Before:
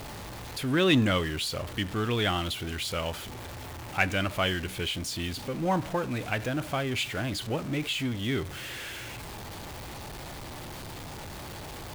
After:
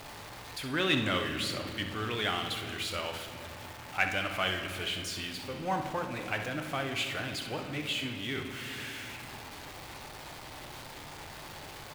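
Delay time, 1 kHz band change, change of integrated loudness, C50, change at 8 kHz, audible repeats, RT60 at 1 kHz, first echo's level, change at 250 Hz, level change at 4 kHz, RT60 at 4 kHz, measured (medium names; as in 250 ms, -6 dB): 65 ms, -2.0 dB, -3.5 dB, 5.0 dB, -4.0 dB, 1, 2.1 s, -10.0 dB, -7.0 dB, -2.0 dB, 1.7 s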